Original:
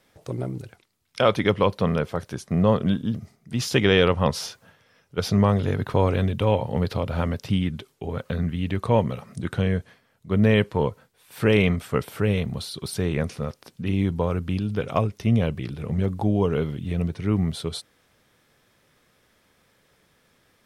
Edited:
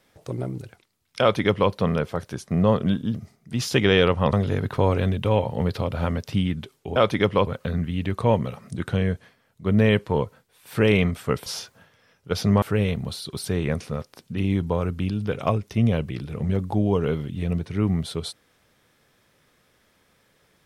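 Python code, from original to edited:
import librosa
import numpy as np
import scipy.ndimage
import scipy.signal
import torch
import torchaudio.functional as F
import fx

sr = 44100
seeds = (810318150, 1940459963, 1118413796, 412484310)

y = fx.edit(x, sr, fx.duplicate(start_s=1.21, length_s=0.51, to_s=8.12),
    fx.move(start_s=4.33, length_s=1.16, to_s=12.11), tone=tone)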